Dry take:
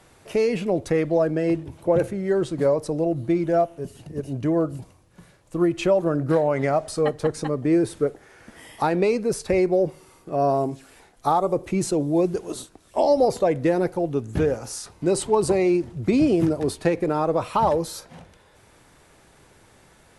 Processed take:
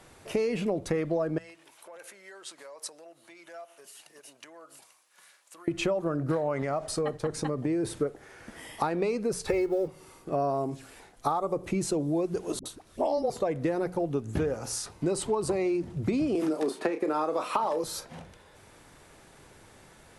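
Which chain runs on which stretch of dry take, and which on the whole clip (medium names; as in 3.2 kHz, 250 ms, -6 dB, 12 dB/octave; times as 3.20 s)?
1.38–5.68 s: treble shelf 5.7 kHz +4.5 dB + compression 10:1, threshold -29 dBFS + high-pass 1.2 kHz
6.62–7.85 s: expander -36 dBFS + compression 2.5:1, threshold -24 dBFS
9.47–9.88 s: companding laws mixed up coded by mu + comb 2.3 ms, depth 76%
12.59–13.30 s: peaking EQ 7.6 kHz -4 dB 0.33 oct + phase dispersion highs, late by 65 ms, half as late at 480 Hz
16.35–17.84 s: high-pass 240 Hz 24 dB/octave + doubling 32 ms -9 dB + three bands compressed up and down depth 100%
whole clip: hum notches 60/120/180 Hz; dynamic bell 1.2 kHz, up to +5 dB, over -42 dBFS, Q 3.8; compression, threshold -25 dBFS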